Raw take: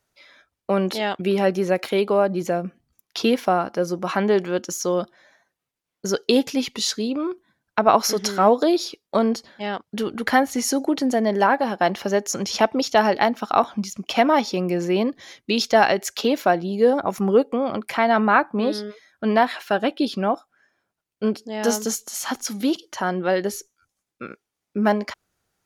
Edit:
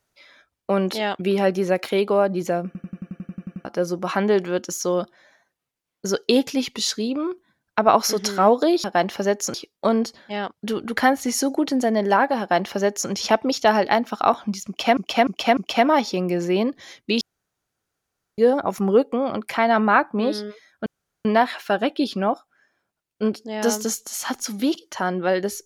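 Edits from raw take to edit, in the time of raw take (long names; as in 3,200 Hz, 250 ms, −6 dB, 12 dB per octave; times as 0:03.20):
0:02.66: stutter in place 0.09 s, 11 plays
0:11.70–0:12.40: duplicate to 0:08.84
0:13.97–0:14.27: repeat, 4 plays
0:15.61–0:16.78: fill with room tone
0:19.26: splice in room tone 0.39 s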